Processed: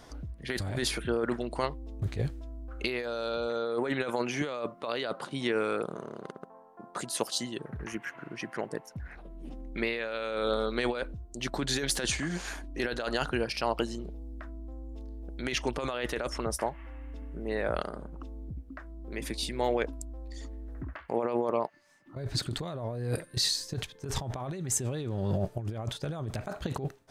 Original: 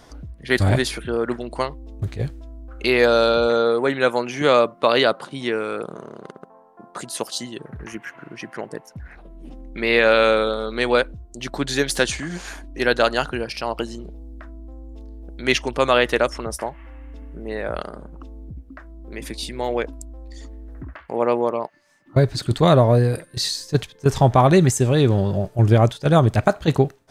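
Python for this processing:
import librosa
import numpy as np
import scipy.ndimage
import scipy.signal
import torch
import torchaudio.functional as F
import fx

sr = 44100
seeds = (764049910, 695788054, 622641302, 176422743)

y = fx.over_compress(x, sr, threshold_db=-23.0, ratio=-1.0)
y = F.gain(torch.from_numpy(y), -8.0).numpy()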